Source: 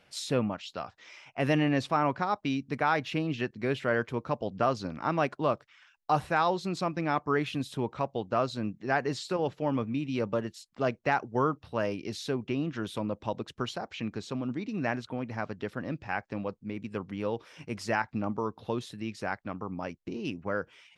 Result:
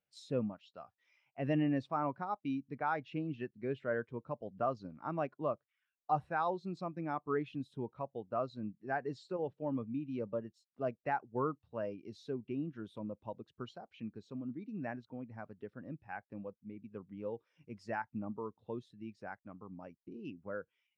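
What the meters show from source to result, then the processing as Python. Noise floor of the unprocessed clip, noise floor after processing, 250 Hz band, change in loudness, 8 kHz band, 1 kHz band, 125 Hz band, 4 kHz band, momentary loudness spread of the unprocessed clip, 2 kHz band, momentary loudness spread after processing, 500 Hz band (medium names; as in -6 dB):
-67 dBFS, under -85 dBFS, -7.5 dB, -8.0 dB, under -20 dB, -8.0 dB, -9.0 dB, -18.0 dB, 9 LU, -11.5 dB, 13 LU, -8.0 dB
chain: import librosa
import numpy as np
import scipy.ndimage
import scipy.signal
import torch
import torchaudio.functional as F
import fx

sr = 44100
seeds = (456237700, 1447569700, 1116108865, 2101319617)

y = fx.spectral_expand(x, sr, expansion=1.5)
y = y * librosa.db_to_amplitude(-7.5)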